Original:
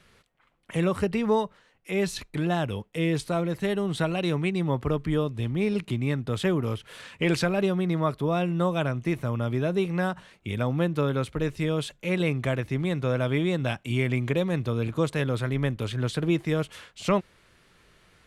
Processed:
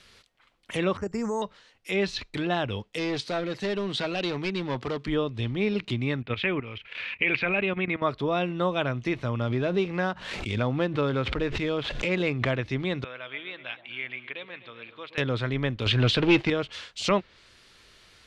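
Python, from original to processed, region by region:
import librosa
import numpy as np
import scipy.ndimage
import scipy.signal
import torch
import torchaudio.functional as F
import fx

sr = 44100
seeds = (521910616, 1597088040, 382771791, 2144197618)

y = fx.chain(x, sr, fx.lowpass(hz=1800.0, slope=24),
    fx.level_steps(step_db=14),
    fx.resample_bad(factor=6, down='none', up='hold'), at=(0.97, 1.42))
y = fx.chain(y, sr, fx.highpass(hz=130.0, slope=12),
    fx.overload_stage(gain_db=23.5), at=(2.94, 5.08))
y = fx.chain(y, sr, fx.lowpass_res(hz=2400.0, q=5.5),
    fx.level_steps(step_db=13), at=(6.22, 8.02))
y = fx.chain(y, sr, fx.median_filter(points=9),
    fx.pre_swell(db_per_s=50.0), at=(9.41, 12.51))
y = fx.chain(y, sr, fx.bandpass_q(hz=2600.0, q=1.2),
    fx.air_absorb(metres=410.0),
    fx.echo_alternate(ms=125, hz=890.0, feedback_pct=61, wet_db=-11.0), at=(13.04, 15.18))
y = fx.chain(y, sr, fx.peak_eq(hz=2700.0, db=7.0, octaves=0.34),
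    fx.leveller(passes=2), at=(15.86, 16.5))
y = fx.peak_eq(y, sr, hz=4500.0, db=10.5, octaves=1.6)
y = fx.env_lowpass_down(y, sr, base_hz=3000.0, full_db=-22.5)
y = fx.peak_eq(y, sr, hz=160.0, db=-10.0, octaves=0.27)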